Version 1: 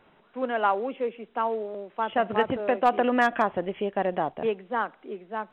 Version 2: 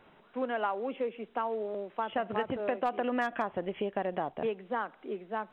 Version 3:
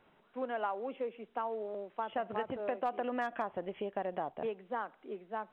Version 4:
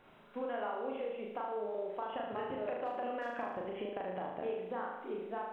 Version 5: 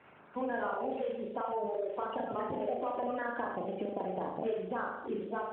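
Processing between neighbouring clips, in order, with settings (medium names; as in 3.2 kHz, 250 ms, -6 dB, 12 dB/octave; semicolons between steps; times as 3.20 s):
compression 3:1, threshold -30 dBFS, peak gain reduction 11 dB
dynamic bell 730 Hz, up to +4 dB, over -40 dBFS, Q 0.79; trim -7 dB
compression 6:1, threshold -42 dBFS, peak gain reduction 12.5 dB; flutter echo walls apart 6.5 m, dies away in 1 s; trim +3.5 dB
coarse spectral quantiser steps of 30 dB; trim +4.5 dB; AMR-NB 12.2 kbps 8 kHz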